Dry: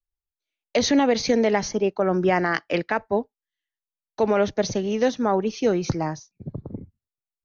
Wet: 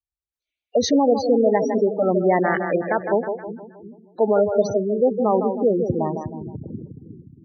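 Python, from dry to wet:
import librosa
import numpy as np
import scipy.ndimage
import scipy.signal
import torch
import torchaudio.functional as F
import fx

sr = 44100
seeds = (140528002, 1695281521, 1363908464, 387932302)

y = scipy.signal.sosfilt(scipy.signal.butter(2, 55.0, 'highpass', fs=sr, output='sos'), x)
y = fx.echo_split(y, sr, split_hz=320.0, low_ms=357, high_ms=158, feedback_pct=52, wet_db=-6.5)
y = fx.dynamic_eq(y, sr, hz=580.0, q=1.1, threshold_db=-32.0, ratio=4.0, max_db=4)
y = fx.spec_gate(y, sr, threshold_db=-15, keep='strong')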